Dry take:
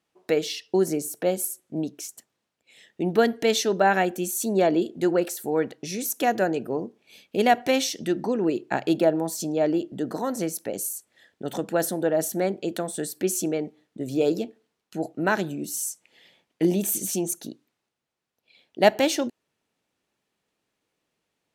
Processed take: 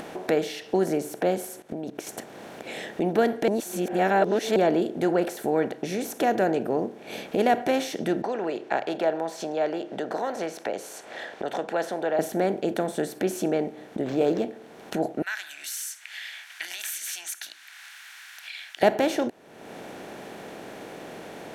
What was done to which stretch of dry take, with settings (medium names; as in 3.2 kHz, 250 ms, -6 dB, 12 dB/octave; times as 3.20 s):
1.62–2.07 s: level held to a coarse grid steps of 23 dB
3.48–4.56 s: reverse
8.22–12.19 s: three-band isolator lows -20 dB, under 530 Hz, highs -21 dB, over 6.4 kHz
14.01–14.44 s: decimation joined by straight lines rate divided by 4×
15.22–18.83 s: elliptic high-pass 1.6 kHz, stop band 70 dB
whole clip: spectral levelling over time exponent 0.6; treble shelf 3.1 kHz -11.5 dB; upward compressor, threshold -22 dBFS; trim -3.5 dB